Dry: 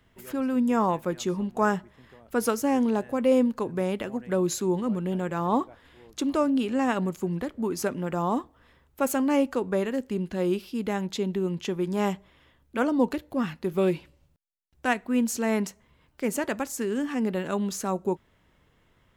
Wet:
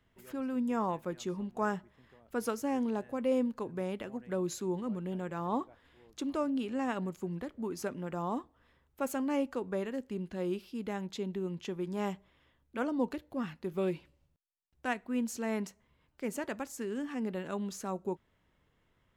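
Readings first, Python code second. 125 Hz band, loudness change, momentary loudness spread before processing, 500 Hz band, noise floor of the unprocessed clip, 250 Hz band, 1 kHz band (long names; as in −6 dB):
−8.5 dB, −8.5 dB, 7 LU, −8.5 dB, −65 dBFS, −8.5 dB, −8.5 dB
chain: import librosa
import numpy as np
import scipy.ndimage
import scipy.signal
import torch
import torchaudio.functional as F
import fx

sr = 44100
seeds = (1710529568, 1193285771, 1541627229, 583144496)

y = fx.high_shelf(x, sr, hz=7500.0, db=-4.0)
y = F.gain(torch.from_numpy(y), -8.5).numpy()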